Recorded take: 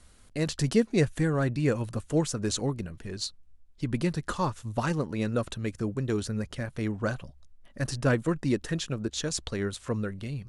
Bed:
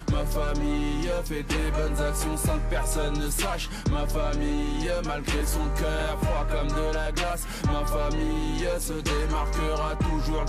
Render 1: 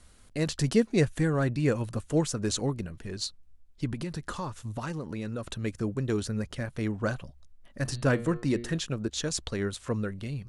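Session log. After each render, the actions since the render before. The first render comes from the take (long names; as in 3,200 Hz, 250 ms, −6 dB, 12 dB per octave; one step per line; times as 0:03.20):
0:03.93–0:05.52: downward compressor, threshold −30 dBFS
0:07.82–0:08.78: hum removal 118.4 Hz, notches 39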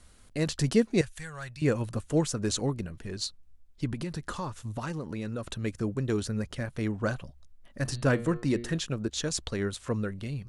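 0:01.01–0:01.62: guitar amp tone stack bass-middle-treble 10-0-10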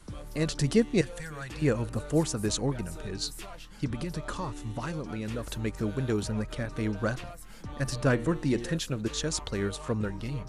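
mix in bed −16 dB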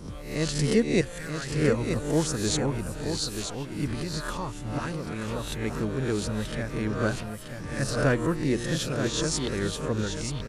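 peak hold with a rise ahead of every peak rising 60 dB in 0.54 s
single-tap delay 931 ms −7 dB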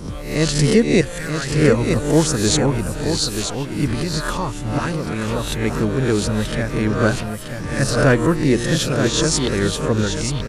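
level +9.5 dB
brickwall limiter −3 dBFS, peak gain reduction 2.5 dB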